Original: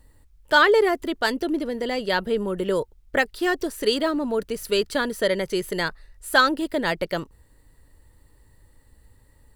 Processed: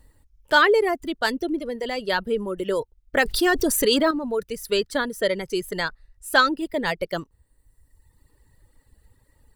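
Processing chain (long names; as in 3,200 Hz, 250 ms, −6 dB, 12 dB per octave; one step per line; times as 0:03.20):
reverb reduction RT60 1.3 s
0:03.17–0:04.11: envelope flattener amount 70%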